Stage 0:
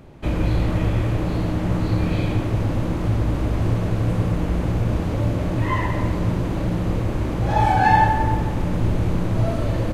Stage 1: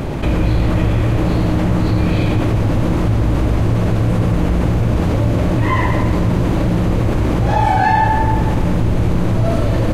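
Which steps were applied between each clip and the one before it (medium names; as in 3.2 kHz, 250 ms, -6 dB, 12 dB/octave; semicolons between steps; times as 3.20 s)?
level flattener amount 70%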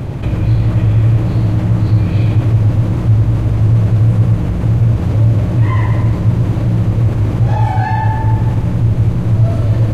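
peaking EQ 110 Hz +13 dB 0.9 oct; trim -5.5 dB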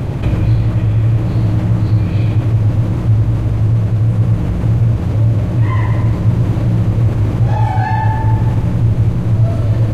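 gain riding within 4 dB 0.5 s; trim -1 dB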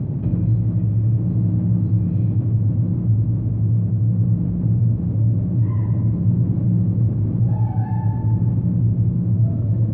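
band-pass filter 180 Hz, Q 1.6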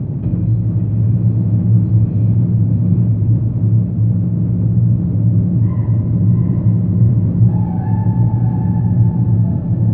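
echo that smears into a reverb 733 ms, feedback 46%, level -3 dB; trim +3 dB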